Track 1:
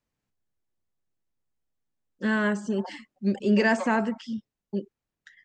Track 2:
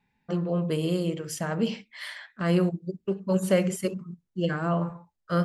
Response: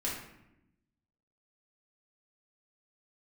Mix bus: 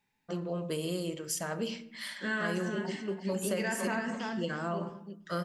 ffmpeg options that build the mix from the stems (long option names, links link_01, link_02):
-filter_complex "[0:a]tiltshelf=frequency=970:gain=-3.5,volume=-8.5dB,asplit=3[link_01][link_02][link_03];[link_02]volume=-3.5dB[link_04];[link_03]volume=-5.5dB[link_05];[1:a]bass=frequency=250:gain=-6,treble=frequency=4000:gain=8,volume=-5.5dB,asplit=2[link_06][link_07];[link_07]volume=-16dB[link_08];[2:a]atrim=start_sample=2205[link_09];[link_04][link_08]amix=inputs=2:normalize=0[link_10];[link_10][link_09]afir=irnorm=-1:irlink=0[link_11];[link_05]aecho=0:1:335|670|1005:1|0.18|0.0324[link_12];[link_01][link_06][link_11][link_12]amix=inputs=4:normalize=0,acompressor=threshold=-28dB:ratio=10"